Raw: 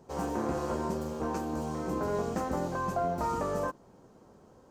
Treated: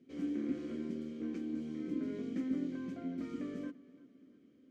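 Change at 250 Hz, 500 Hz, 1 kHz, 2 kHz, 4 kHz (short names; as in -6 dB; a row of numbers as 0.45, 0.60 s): -1.0 dB, -14.0 dB, -27.5 dB, -13.0 dB, n/a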